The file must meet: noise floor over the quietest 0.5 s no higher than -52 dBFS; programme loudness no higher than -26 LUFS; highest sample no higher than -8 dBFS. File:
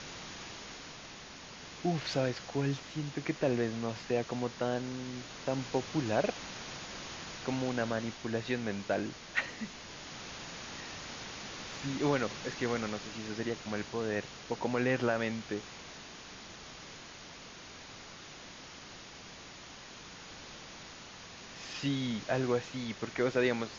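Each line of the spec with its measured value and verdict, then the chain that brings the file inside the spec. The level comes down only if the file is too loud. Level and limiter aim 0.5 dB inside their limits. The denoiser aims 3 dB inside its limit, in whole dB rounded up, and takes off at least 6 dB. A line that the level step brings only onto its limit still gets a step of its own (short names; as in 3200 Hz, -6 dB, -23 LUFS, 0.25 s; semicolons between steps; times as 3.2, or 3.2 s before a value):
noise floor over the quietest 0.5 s -50 dBFS: fail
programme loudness -35.5 LUFS: OK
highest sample -16.0 dBFS: OK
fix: denoiser 6 dB, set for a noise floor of -50 dBFS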